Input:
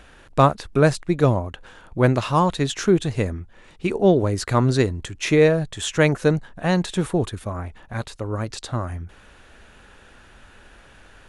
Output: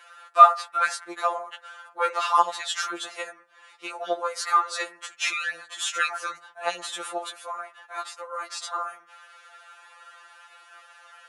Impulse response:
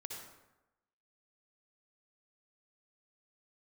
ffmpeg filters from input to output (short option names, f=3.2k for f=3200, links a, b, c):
-filter_complex "[0:a]asplit=2[a][b];[b]asoftclip=type=tanh:threshold=-15.5dB,volume=-11dB[c];[a][c]amix=inputs=2:normalize=0,highpass=f=680:w=0.5412,highpass=f=680:w=1.3066,equalizer=f=1.3k:w=7.7:g=14.5,asplit=2[d][e];[e]lowpass=f=2.1k:w=0.5412,lowpass=f=2.1k:w=1.3066[f];[1:a]atrim=start_sample=2205,afade=t=out:st=0.38:d=0.01,atrim=end_sample=17199,asetrate=61740,aresample=44100[g];[f][g]afir=irnorm=-1:irlink=0,volume=-10.5dB[h];[d][h]amix=inputs=2:normalize=0,afftfilt=real='re*2.83*eq(mod(b,8),0)':imag='im*2.83*eq(mod(b,8),0)':win_size=2048:overlap=0.75"